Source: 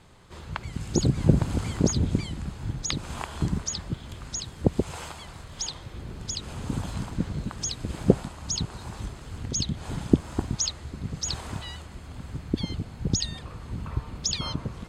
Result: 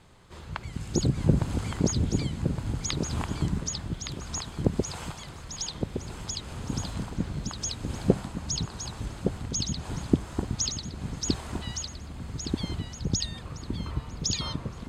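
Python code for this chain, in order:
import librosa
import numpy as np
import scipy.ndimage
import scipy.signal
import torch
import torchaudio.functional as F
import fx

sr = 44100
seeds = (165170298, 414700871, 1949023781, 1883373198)

p1 = np.clip(x, -10.0 ** (-17.5 / 20.0), 10.0 ** (-17.5 / 20.0))
p2 = x + (p1 * librosa.db_to_amplitude(-11.0))
p3 = fx.echo_feedback(p2, sr, ms=1165, feedback_pct=28, wet_db=-6.0)
y = p3 * librosa.db_to_amplitude(-4.0)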